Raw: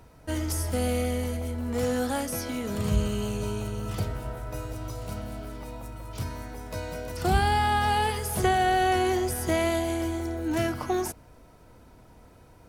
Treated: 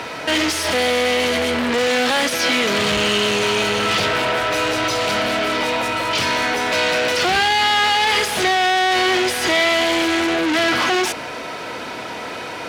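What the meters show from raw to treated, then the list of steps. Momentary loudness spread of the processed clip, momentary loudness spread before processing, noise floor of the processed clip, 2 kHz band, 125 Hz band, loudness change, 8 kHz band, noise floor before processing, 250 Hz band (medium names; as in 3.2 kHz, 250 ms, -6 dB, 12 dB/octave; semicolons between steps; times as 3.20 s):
7 LU, 13 LU, -30 dBFS, +17.0 dB, -4.0 dB, +11.0 dB, +10.5 dB, -53 dBFS, +7.0 dB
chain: overdrive pedal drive 38 dB, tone 1.6 kHz, clips at -11.5 dBFS; frequency weighting D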